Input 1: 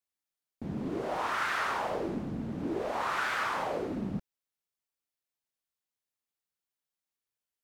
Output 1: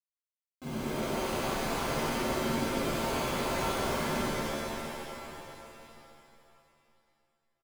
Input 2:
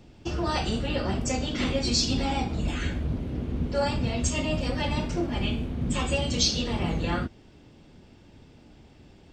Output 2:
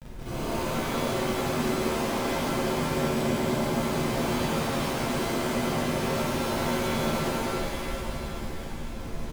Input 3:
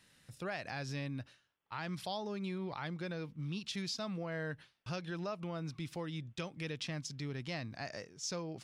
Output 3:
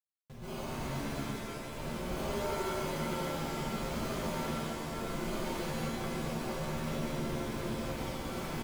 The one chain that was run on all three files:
comb filter that takes the minimum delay 7.7 ms; high-pass 130 Hz 12 dB/octave; compression, threshold -32 dBFS; sample-and-hold 24×; Schmitt trigger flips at -49 dBFS; flange 1.4 Hz, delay 0.7 ms, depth 9.3 ms, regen -62%; on a send: delay 1097 ms -18 dB; on the sum: pitch-shifted reverb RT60 2.5 s, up +7 st, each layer -2 dB, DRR -10 dB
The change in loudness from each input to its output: +0.5 LU, -0.5 LU, +4.5 LU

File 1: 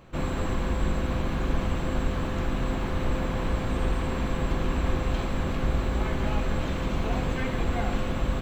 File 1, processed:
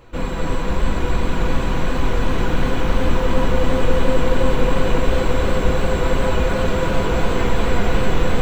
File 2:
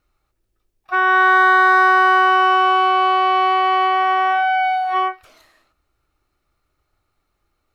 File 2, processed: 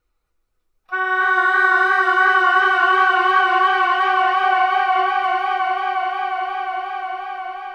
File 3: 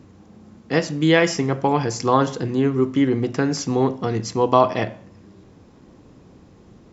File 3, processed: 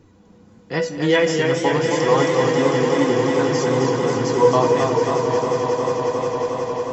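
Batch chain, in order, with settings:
feedback comb 490 Hz, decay 0.22 s, harmonics all, mix 80%; flange 0.93 Hz, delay 2.1 ms, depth 5.5 ms, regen -28%; echo with a slow build-up 180 ms, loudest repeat 5, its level -10.5 dB; modulated delay 267 ms, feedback 65%, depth 89 cents, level -5 dB; peak normalisation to -3 dBFS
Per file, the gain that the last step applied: +20.0 dB, +10.5 dB, +12.0 dB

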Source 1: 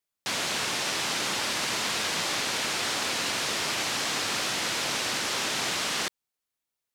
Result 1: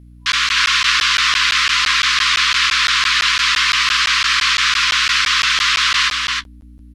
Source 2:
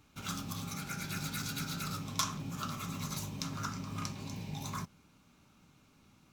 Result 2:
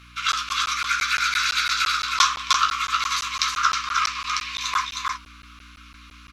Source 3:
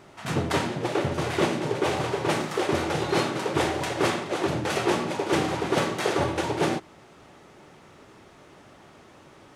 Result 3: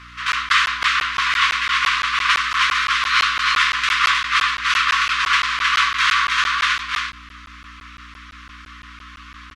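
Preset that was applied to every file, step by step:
frequency weighting A; FFT band-reject 110–1000 Hz; high-pass 77 Hz 6 dB/octave; three-band isolator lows -21 dB, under 570 Hz, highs -16 dB, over 5.4 kHz; in parallel at -2.5 dB: gain riding within 4 dB 2 s; on the sum: flange 1.7 Hz, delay 9.5 ms, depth 7.3 ms, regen -26%; hum 60 Hz, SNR 24 dB; on a send: delay 313 ms -3 dB; on the sum: crackling interface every 0.17 s, samples 512, zero, from 0.32 s; MP2 192 kbps 44.1 kHz; peak normalisation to -2 dBFS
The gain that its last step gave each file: +12.5 dB, +18.0 dB, +12.0 dB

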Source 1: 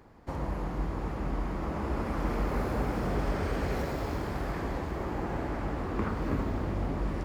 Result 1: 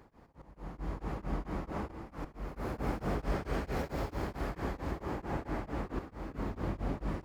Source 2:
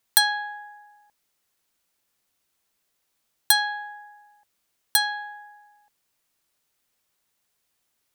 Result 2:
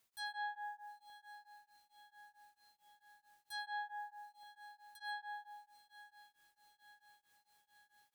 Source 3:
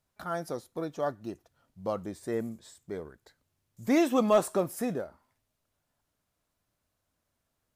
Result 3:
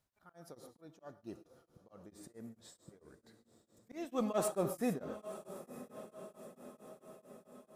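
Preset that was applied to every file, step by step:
single-diode clipper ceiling -4 dBFS; slow attack 575 ms; on a send: echo that smears into a reverb 952 ms, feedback 59%, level -14.5 dB; on the sum: gated-style reverb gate 160 ms rising, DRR 10 dB; tremolo of two beating tones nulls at 4.5 Hz; trim -1.5 dB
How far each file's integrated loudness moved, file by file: -5.5 LU, -24.0 LU, -10.0 LU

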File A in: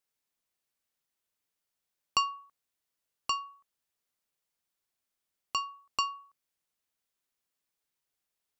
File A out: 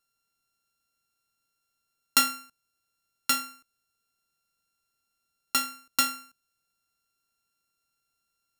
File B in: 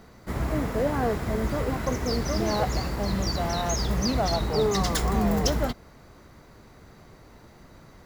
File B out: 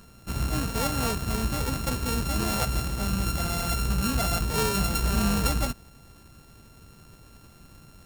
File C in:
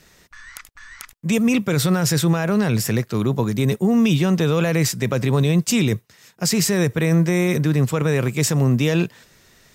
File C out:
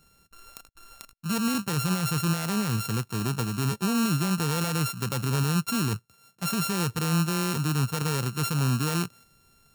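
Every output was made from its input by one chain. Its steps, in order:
sorted samples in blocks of 32 samples; tone controls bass +5 dB, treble +6 dB; normalise loudness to -27 LUFS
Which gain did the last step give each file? +3.0 dB, -4.0 dB, -11.5 dB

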